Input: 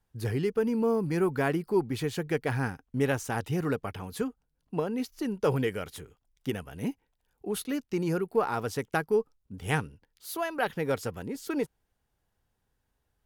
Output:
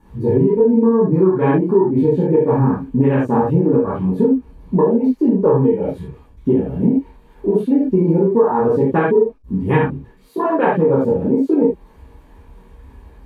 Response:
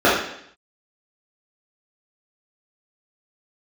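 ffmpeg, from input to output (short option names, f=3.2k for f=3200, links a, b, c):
-filter_complex "[0:a]aeval=exprs='val(0)+0.5*0.00891*sgn(val(0))':c=same,afwtdn=0.0282[a];[1:a]atrim=start_sample=2205,atrim=end_sample=3087,asetrate=29547,aresample=44100[b];[a][b]afir=irnorm=-1:irlink=0,acompressor=threshold=0dB:ratio=5,volume=-11dB"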